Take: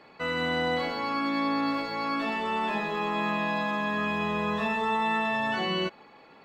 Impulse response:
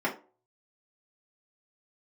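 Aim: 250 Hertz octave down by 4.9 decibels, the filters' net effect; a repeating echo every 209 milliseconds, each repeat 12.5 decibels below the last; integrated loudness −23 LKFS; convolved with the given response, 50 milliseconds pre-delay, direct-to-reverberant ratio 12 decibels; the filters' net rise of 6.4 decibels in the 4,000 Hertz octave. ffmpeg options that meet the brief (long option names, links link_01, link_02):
-filter_complex "[0:a]equalizer=frequency=250:width_type=o:gain=-6,equalizer=frequency=4000:width_type=o:gain=8.5,aecho=1:1:209|418|627:0.237|0.0569|0.0137,asplit=2[link_01][link_02];[1:a]atrim=start_sample=2205,adelay=50[link_03];[link_02][link_03]afir=irnorm=-1:irlink=0,volume=-22dB[link_04];[link_01][link_04]amix=inputs=2:normalize=0,volume=3.5dB"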